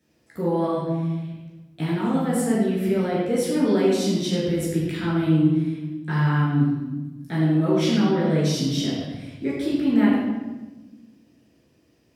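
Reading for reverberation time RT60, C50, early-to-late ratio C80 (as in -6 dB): 1.1 s, -0.5 dB, 2.0 dB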